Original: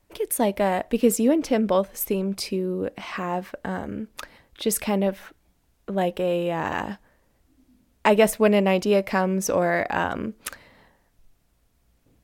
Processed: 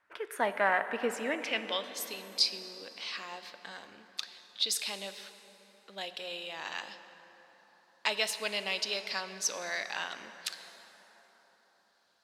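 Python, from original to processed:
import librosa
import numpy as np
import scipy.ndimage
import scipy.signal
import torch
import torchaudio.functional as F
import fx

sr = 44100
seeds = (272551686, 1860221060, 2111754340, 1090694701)

y = fx.filter_sweep_bandpass(x, sr, from_hz=1500.0, to_hz=4300.0, start_s=1.07, end_s=1.96, q=3.4)
y = fx.rev_plate(y, sr, seeds[0], rt60_s=4.7, hf_ratio=0.5, predelay_ms=0, drr_db=9.5)
y = y * librosa.db_to_amplitude(8.5)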